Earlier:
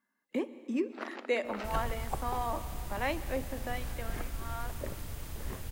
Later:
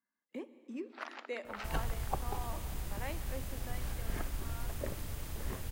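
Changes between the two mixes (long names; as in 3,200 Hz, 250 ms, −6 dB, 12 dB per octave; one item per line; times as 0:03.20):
speech −10.5 dB
first sound: add high-pass filter 810 Hz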